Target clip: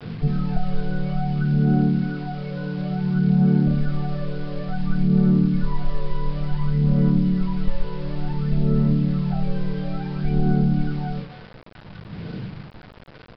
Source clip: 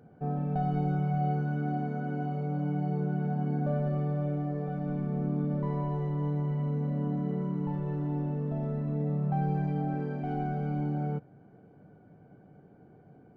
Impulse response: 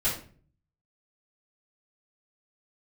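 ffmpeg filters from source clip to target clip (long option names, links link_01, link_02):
-filter_complex "[0:a]aphaser=in_gain=1:out_gain=1:delay=2:decay=0.79:speed=0.57:type=sinusoidal,equalizer=frequency=730:width=4.1:gain=-11,bandreject=frequency=60:width_type=h:width=6,bandreject=frequency=120:width_type=h:width=6,bandreject=frequency=180:width_type=h:width=6,bandreject=frequency=240:width_type=h:width=6,bandreject=frequency=300:width_type=h:width=6,bandreject=frequency=360:width_type=h:width=6,bandreject=frequency=420:width_type=h:width=6,asettb=1/sr,asplit=3[link_01][link_02][link_03];[link_01]atrim=end=5.504[link_04];[link_02]atrim=start=5.5:end=7.82,asetpts=PTS-STARTPTS,afade=type=in:duration=0.004:curve=qsin,afade=type=out:start_time=2.316:duration=0.004:curve=qsin,asubboost=boost=4.5:cutoff=110[link_05];[link_03]atrim=start=7.816[link_06];[link_04][link_05]acrossfade=duration=0.004:curve1=hsin:curve2=qsin[link_07];[link_07][link_06]acrossfade=duration=0.004:curve1=qsin:curve2=hsin,aecho=1:1:257:0.119[link_08];[1:a]atrim=start_sample=2205,atrim=end_sample=3528[link_09];[link_08][link_09]afir=irnorm=-1:irlink=0,acrossover=split=400|1300[link_10][link_11][link_12];[link_10]acompressor=threshold=-15dB:ratio=4[link_13];[link_11]acompressor=threshold=-37dB:ratio=4[link_14];[link_12]acompressor=threshold=-48dB:ratio=4[link_15];[link_13][link_14][link_15]amix=inputs=3:normalize=0,acrusher=bits=6:mix=0:aa=0.000001,aresample=11025,aresample=44100"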